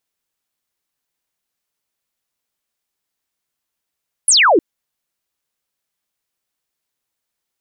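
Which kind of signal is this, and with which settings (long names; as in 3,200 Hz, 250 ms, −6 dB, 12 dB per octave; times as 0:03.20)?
single falling chirp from 11,000 Hz, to 290 Hz, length 0.31 s sine, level −8 dB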